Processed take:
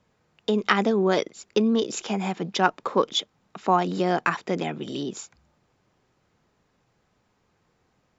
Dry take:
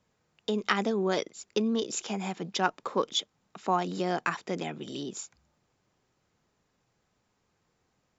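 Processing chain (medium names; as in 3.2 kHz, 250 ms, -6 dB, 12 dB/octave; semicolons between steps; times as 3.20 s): low-pass 3.9 kHz 6 dB/octave; trim +6.5 dB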